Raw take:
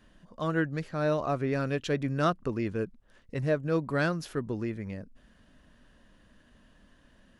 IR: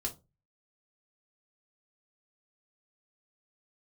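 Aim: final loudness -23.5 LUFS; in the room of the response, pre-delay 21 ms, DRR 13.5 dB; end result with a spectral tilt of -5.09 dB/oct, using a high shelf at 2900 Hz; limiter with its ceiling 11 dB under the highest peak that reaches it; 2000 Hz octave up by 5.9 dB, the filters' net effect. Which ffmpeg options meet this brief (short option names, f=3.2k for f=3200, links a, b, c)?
-filter_complex "[0:a]equalizer=f=2k:t=o:g=6,highshelf=f=2.9k:g=6.5,alimiter=limit=-21.5dB:level=0:latency=1,asplit=2[a][b];[1:a]atrim=start_sample=2205,adelay=21[c];[b][c]afir=irnorm=-1:irlink=0,volume=-14.5dB[d];[a][d]amix=inputs=2:normalize=0,volume=9dB"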